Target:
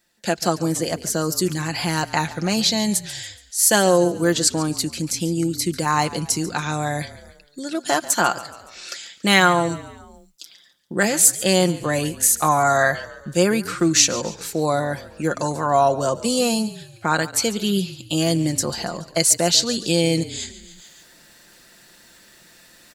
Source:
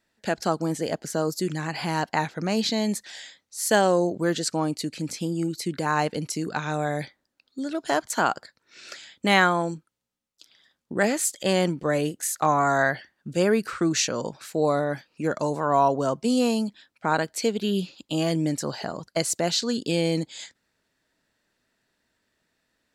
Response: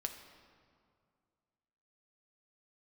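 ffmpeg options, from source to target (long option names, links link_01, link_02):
-filter_complex "[0:a]aecho=1:1:5.7:0.46,asplit=5[link_01][link_02][link_03][link_04][link_05];[link_02]adelay=141,afreqshift=-37,volume=-17dB[link_06];[link_03]adelay=282,afreqshift=-74,volume=-23.4dB[link_07];[link_04]adelay=423,afreqshift=-111,volume=-29.8dB[link_08];[link_05]adelay=564,afreqshift=-148,volume=-36.1dB[link_09];[link_01][link_06][link_07][link_08][link_09]amix=inputs=5:normalize=0,areverse,acompressor=mode=upward:threshold=-40dB:ratio=2.5,areverse,highshelf=frequency=4200:gain=11,volume=2dB"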